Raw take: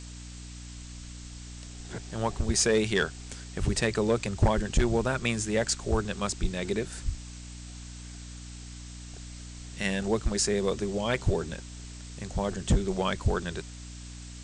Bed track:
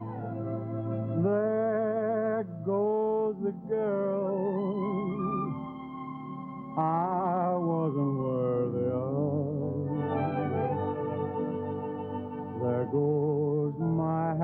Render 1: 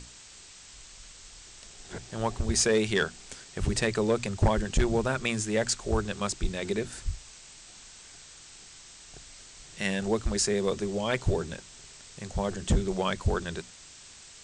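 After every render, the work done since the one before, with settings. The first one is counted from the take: notches 60/120/180/240/300 Hz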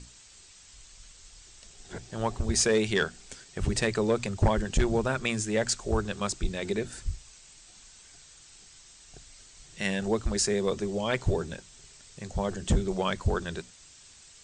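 denoiser 6 dB, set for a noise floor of -50 dBFS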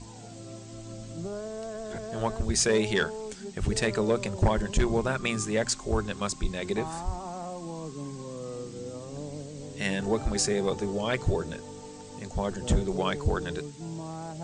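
add bed track -9.5 dB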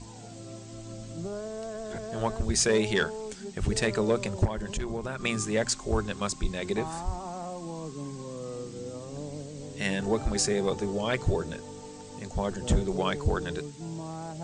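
4.45–5.25 compressor 3:1, threshold -31 dBFS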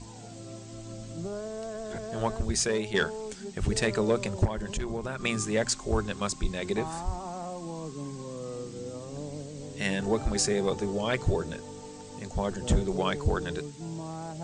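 2.35–2.94 fade out, to -8 dB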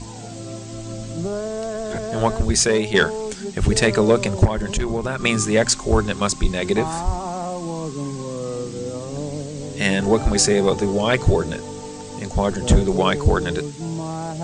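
gain +10 dB

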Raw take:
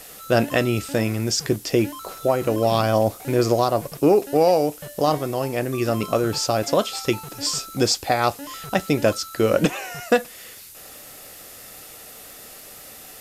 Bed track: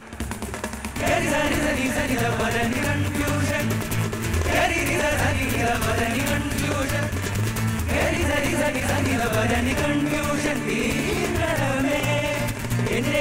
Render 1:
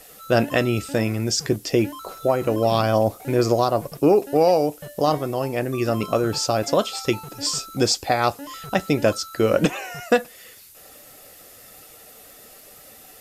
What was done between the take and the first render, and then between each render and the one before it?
denoiser 6 dB, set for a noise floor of -42 dBFS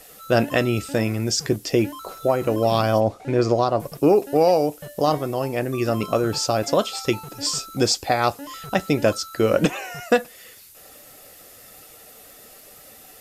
3–3.8 air absorption 82 m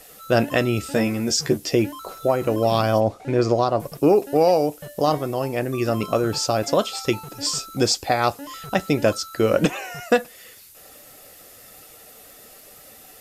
0.82–1.75 doubler 13 ms -4.5 dB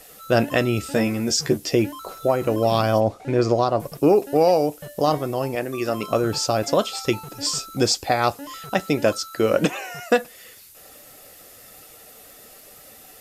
5.55–6.11 HPF 290 Hz 6 dB/oct; 8.58–10.21 low shelf 84 Hz -11 dB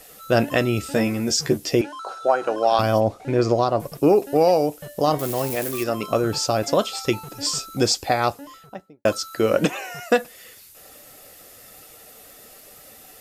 1.81–2.79 speaker cabinet 440–8400 Hz, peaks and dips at 800 Hz +7 dB, 1500 Hz +10 dB, 2100 Hz -7 dB, 7500 Hz -5 dB; 5.19–5.84 switching spikes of -20.5 dBFS; 8.1–9.05 studio fade out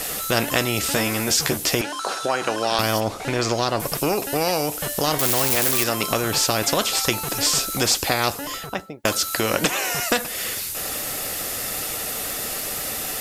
in parallel at +2 dB: compressor, threshold -28 dBFS, peak gain reduction 15 dB; on the sum: spectral compressor 2:1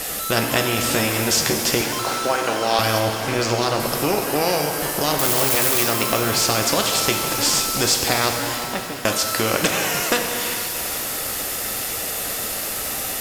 shimmer reverb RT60 3.1 s, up +12 st, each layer -8 dB, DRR 3 dB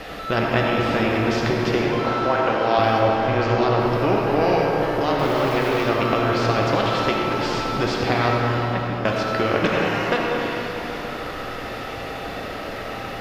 air absorption 310 m; digital reverb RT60 3 s, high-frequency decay 0.25×, pre-delay 40 ms, DRR 1.5 dB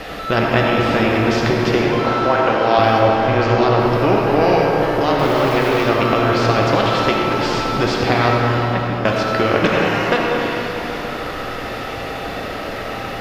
gain +4.5 dB; limiter -2 dBFS, peak gain reduction 1 dB

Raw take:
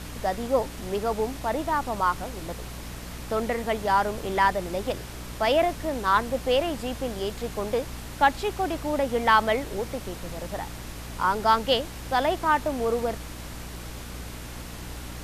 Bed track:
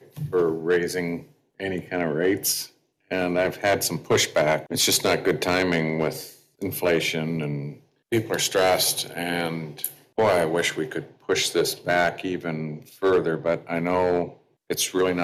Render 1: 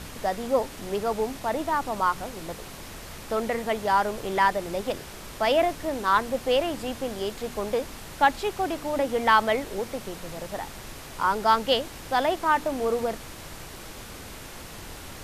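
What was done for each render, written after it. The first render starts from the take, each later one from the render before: de-hum 60 Hz, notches 5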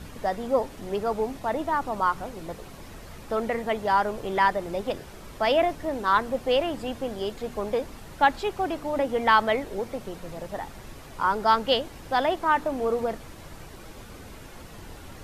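denoiser 8 dB, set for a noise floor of -42 dBFS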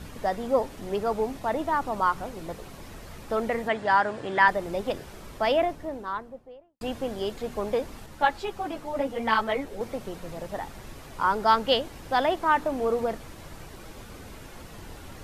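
3.68–4.48 speaker cabinet 110–8300 Hz, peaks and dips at 120 Hz +5 dB, 200 Hz -3 dB, 290 Hz +5 dB, 410 Hz -4 dB, 1700 Hz +8 dB, 6100 Hz -6 dB; 5.18–6.81 studio fade out; 8.06–9.81 ensemble effect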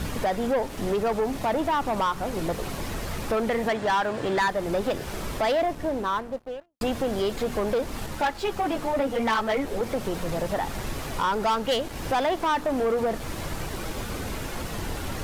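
compressor 2:1, threshold -35 dBFS, peak gain reduction 11.5 dB; sample leveller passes 3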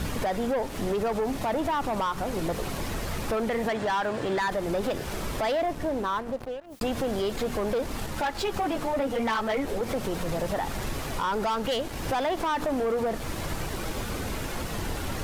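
limiter -22 dBFS, peak gain reduction 4.5 dB; backwards sustainer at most 120 dB/s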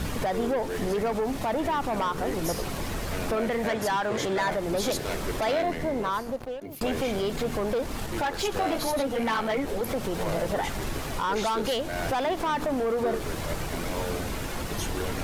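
add bed track -13 dB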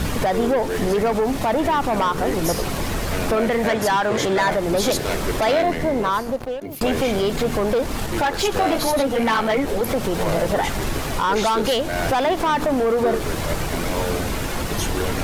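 gain +7.5 dB

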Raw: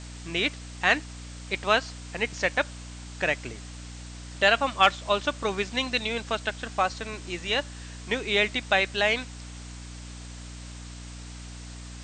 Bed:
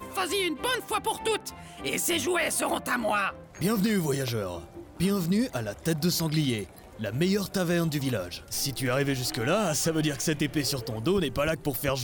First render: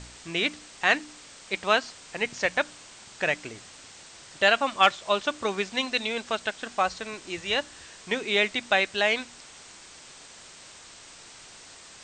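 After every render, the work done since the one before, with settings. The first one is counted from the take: de-hum 60 Hz, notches 5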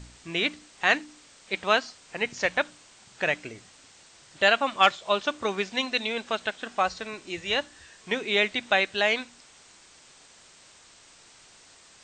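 noise print and reduce 6 dB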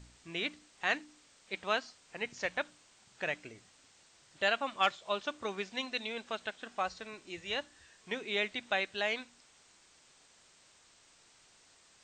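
gain -9.5 dB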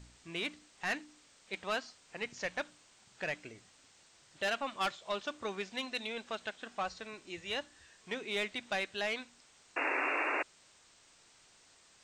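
soft clip -27 dBFS, distortion -11 dB; 9.76–10.43 painted sound noise 260–2800 Hz -33 dBFS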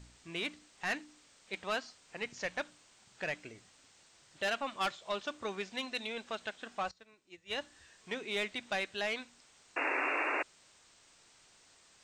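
6.91–7.58 upward expander 2.5:1, over -47 dBFS

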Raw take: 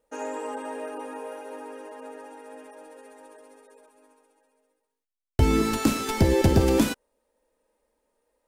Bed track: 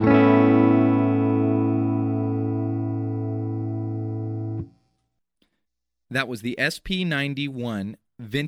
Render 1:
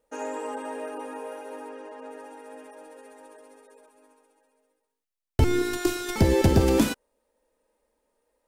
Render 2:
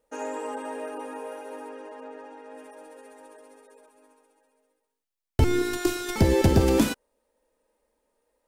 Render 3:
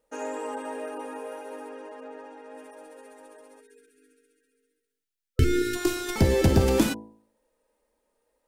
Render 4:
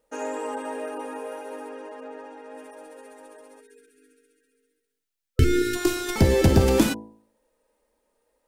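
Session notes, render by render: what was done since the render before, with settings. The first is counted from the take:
1.69–2.11 air absorption 56 m; 5.44–6.16 robotiser 355 Hz
2.04–2.55 air absorption 92 m
3.6–5.75 spectral delete 510–1300 Hz; de-hum 54.87 Hz, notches 18
gain +2.5 dB

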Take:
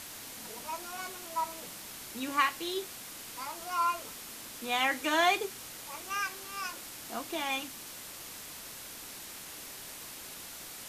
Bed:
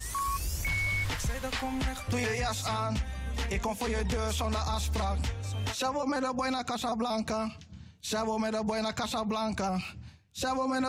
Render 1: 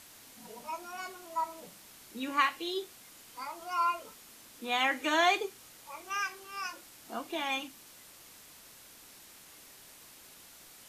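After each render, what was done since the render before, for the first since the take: noise print and reduce 9 dB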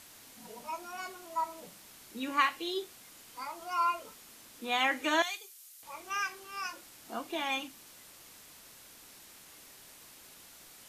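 5.22–5.83 differentiator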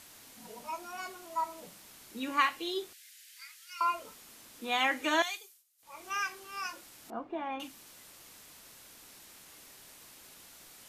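2.93–3.81 elliptic high-pass 1700 Hz, stop band 60 dB; 5.36–6.05 dip -20 dB, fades 0.28 s; 7.1–7.6 LPF 1200 Hz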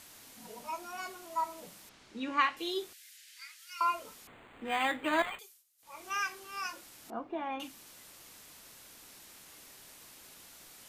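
1.89–2.57 air absorption 110 m; 3.17–3.59 weighting filter A; 4.27–5.39 decimation joined by straight lines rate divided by 8×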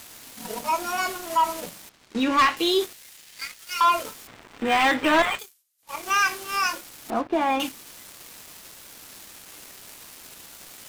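sample leveller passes 3; in parallel at -2.5 dB: limiter -23.5 dBFS, peak gain reduction 10 dB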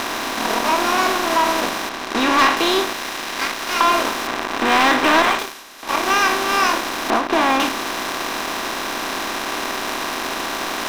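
per-bin compression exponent 0.4; ending taper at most 100 dB/s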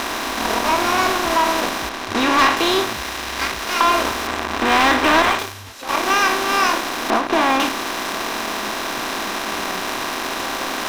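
add bed -7 dB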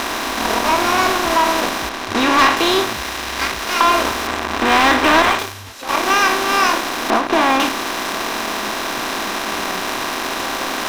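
gain +2 dB; limiter -2 dBFS, peak gain reduction 1.5 dB

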